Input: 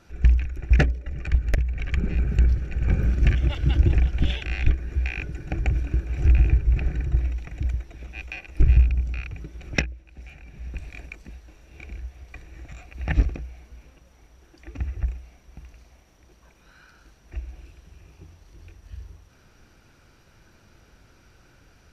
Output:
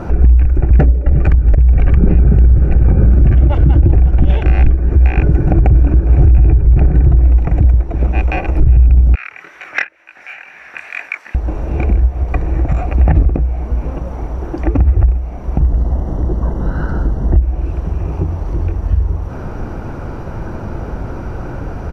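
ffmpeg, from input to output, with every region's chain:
ffmpeg -i in.wav -filter_complex "[0:a]asettb=1/sr,asplit=3[link_01][link_02][link_03];[link_01]atrim=end=9.154[link_04];[link_02]atrim=start=9.15:end=11.35,asetpts=PTS-STARTPTS,afade=type=in:duration=0.004:curve=qsin,afade=type=out:start_time=2.196:duration=0.004:curve=qsin,highpass=frequency=1800:width_type=q:width=2.7,flanger=delay=18.5:depth=7.7:speed=2.1[link_05];[link_03]atrim=start=11.346[link_06];[link_04][link_05]acrossfade=duration=0.004:curve1=hsin:curve2=qsin[link_07];[link_07][link_06]acrossfade=duration=0.004:curve1=qsin:curve2=hsin,asettb=1/sr,asplit=3[link_08][link_09][link_10];[link_08]atrim=end=15.604[link_11];[link_09]atrim=start=15.6:end=17.42,asetpts=PTS-STARTPTS,afade=type=in:duration=0.004:curve=qsin,afade=type=out:start_time=1.816:duration=0.004:curve=qsin,lowshelf=frequency=450:gain=12,acompressor=threshold=-36dB:ratio=1.5:attack=3.2:release=140:knee=1:detection=peak,asuperstop=centerf=2400:order=12:qfactor=3.8[link_12];[link_10]atrim=start=17.416[link_13];[link_11][link_12]acrossfade=duration=0.004:curve1=hsin:curve2=qsin[link_14];[link_14][link_13]acrossfade=duration=0.004:curve1=qsin:curve2=hsin,firequalizer=gain_entry='entry(920,0);entry(1700,-13);entry(3600,-23)':delay=0.05:min_phase=1,acompressor=threshold=-47dB:ratio=2,alimiter=level_in=33.5dB:limit=-1dB:release=50:level=0:latency=1,volume=-1dB" out.wav

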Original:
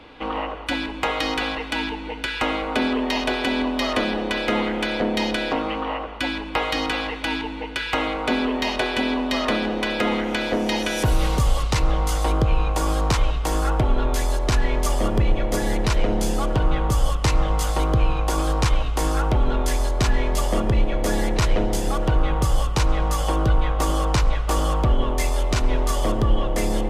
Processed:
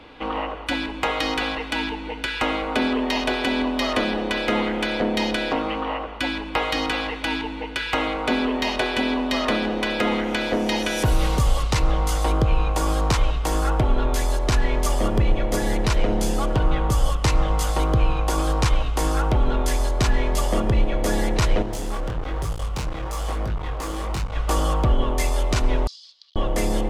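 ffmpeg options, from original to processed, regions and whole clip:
ffmpeg -i in.wav -filter_complex "[0:a]asettb=1/sr,asplit=3[link_01][link_02][link_03];[link_01]atrim=end=21.624[link_04];[link_02]atrim=start=21.62:end=24.36,asetpts=PTS-STARTPTS,afade=type=in:duration=0.004:curve=qsin,afade=type=out:start_time=2.736:duration=0.004:curve=qsin,volume=21dB,asoftclip=hard,volume=-21dB,flanger=delay=19.5:depth=5.7:speed=1.1[link_05];[link_03]atrim=start=24.356[link_06];[link_04][link_05]acrossfade=duration=0.004:curve1=hsin:curve2=qsin[link_07];[link_07][link_06]acrossfade=duration=0.004:curve1=qsin:curve2=hsin,asettb=1/sr,asplit=3[link_08][link_09][link_10];[link_08]atrim=end=25.874[link_11];[link_09]atrim=start=25.87:end=26.36,asetpts=PTS-STARTPTS,afade=type=in:duration=0.004:curve=qsin,afade=type=out:start_time=0.486:duration=0.004:curve=qsin,asoftclip=type=hard:threshold=-16.5dB,asuperpass=centerf=4500:order=4:qfactor=3.4[link_12];[link_10]atrim=start=26.356[link_13];[link_11][link_12]acrossfade=duration=0.004:curve1=hsin:curve2=qsin[link_14];[link_14][link_13]acrossfade=duration=0.004:curve1=qsin:curve2=hsin" out.wav

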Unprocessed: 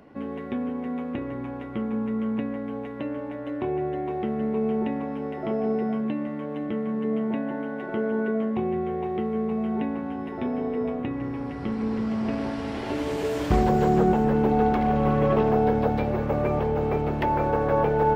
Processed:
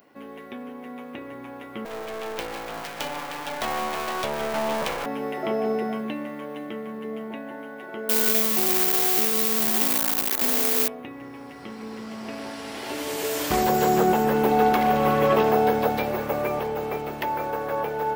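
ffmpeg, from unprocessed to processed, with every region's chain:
ffmpeg -i in.wav -filter_complex "[0:a]asettb=1/sr,asplit=3[link_01][link_02][link_03];[link_01]atrim=end=1.854[link_04];[link_02]atrim=start=1.85:end=5.06,asetpts=PTS-STARTPTS,afade=type=in:duration=0.004:curve=qsin,afade=type=out:start_time=3.206:duration=0.004:curve=qsin,lowpass=frequency=4000:width_type=q:width=2.3,aeval=exprs='abs(val(0))':channel_layout=same[link_05];[link_03]atrim=start=5.056[link_06];[link_04][link_05]acrossfade=duration=0.004:curve1=hsin:curve2=qsin[link_07];[link_07][link_06]acrossfade=duration=0.004:curve1=qsin:curve2=hsin,asettb=1/sr,asplit=3[link_08][link_09][link_10];[link_08]atrim=end=8.094[link_11];[link_09]atrim=start=8.09:end=10.88,asetpts=PTS-STARTPTS,afade=type=in:duration=0.004:curve=qsin,afade=type=out:start_time=2.786:duration=0.004:curve=qsin,acontrast=30,acrusher=bits=5:dc=4:mix=0:aa=0.000001[link_12];[link_10]atrim=start=10.876[link_13];[link_11][link_12]acrossfade=duration=0.004:curve1=hsin:curve2=qsin[link_14];[link_14][link_13]acrossfade=duration=0.004:curve1=qsin:curve2=hsin,aemphasis=mode=production:type=riaa,dynaudnorm=framelen=350:gausssize=13:maxgain=9.5dB,volume=-3dB" out.wav

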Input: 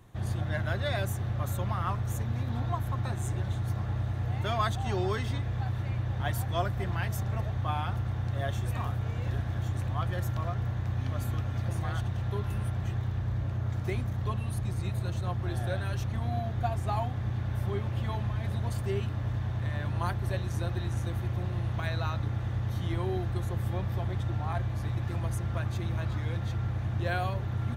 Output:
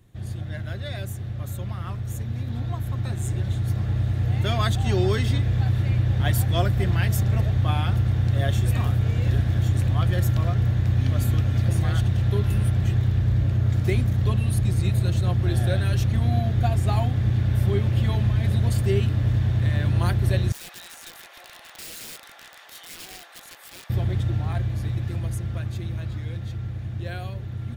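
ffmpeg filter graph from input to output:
ffmpeg -i in.wav -filter_complex "[0:a]asettb=1/sr,asplit=3[link_01][link_02][link_03];[link_01]atrim=end=20.524[link_04];[link_02]atrim=start=20.52:end=23.9,asetpts=PTS-STARTPTS,afade=type=in:duration=0.004:curve=qsin,afade=type=out:start_time=3.376:duration=0.004:curve=qsin,highpass=frequency=770:width=0.5412,highpass=frequency=770:width=1.3066,acrossover=split=1100[link_05][link_06];[link_05]aeval=exprs='val(0)*(1-0.5/2+0.5/2*cos(2*PI*6.5*n/s))':channel_layout=same[link_07];[link_06]aeval=exprs='val(0)*(1-0.5/2-0.5/2*cos(2*PI*6.5*n/s))':channel_layout=same[link_08];[link_07][link_08]amix=inputs=2:normalize=0,aeval=exprs='(mod(133*val(0)+1,2)-1)/133':channel_layout=same[link_09];[link_03]atrim=start=23.896[link_10];[link_04][link_09]acrossfade=duration=0.004:curve1=hsin:curve2=qsin[link_11];[link_11][link_10]acrossfade=duration=0.004:curve1=qsin:curve2=hsin,equalizer=frequency=980:width=1:gain=-10.5,bandreject=frequency=6100:width=19,dynaudnorm=framelen=230:gausssize=31:maxgain=10.5dB" out.wav

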